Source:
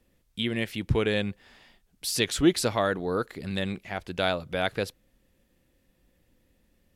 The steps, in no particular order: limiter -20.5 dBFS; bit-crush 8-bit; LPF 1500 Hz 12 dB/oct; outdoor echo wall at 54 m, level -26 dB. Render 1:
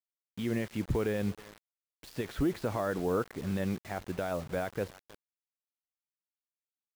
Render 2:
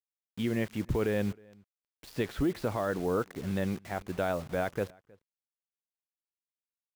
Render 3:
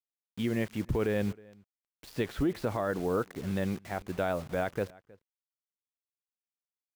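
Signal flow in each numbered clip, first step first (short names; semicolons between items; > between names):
outdoor echo > limiter > LPF > bit-crush; LPF > limiter > bit-crush > outdoor echo; LPF > bit-crush > outdoor echo > limiter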